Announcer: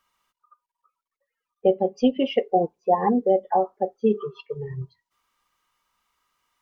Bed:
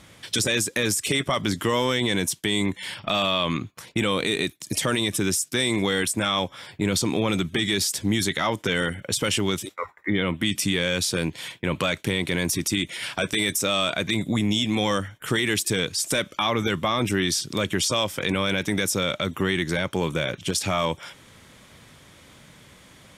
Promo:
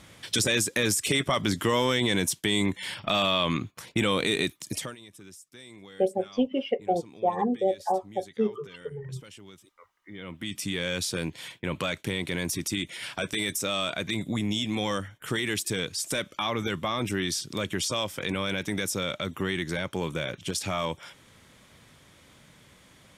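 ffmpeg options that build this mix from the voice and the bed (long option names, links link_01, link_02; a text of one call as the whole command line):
ffmpeg -i stem1.wav -i stem2.wav -filter_complex "[0:a]adelay=4350,volume=-5.5dB[link_01];[1:a]volume=17.5dB,afade=type=out:start_time=4.59:duration=0.36:silence=0.0707946,afade=type=in:start_time=10.06:duration=0.84:silence=0.112202[link_02];[link_01][link_02]amix=inputs=2:normalize=0" out.wav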